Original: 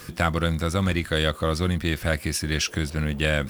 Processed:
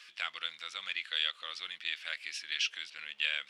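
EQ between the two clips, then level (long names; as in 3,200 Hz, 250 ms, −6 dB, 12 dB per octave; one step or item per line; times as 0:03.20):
high-pass with resonance 2,900 Hz, resonance Q 2
head-to-tape spacing loss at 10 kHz 25 dB
0.0 dB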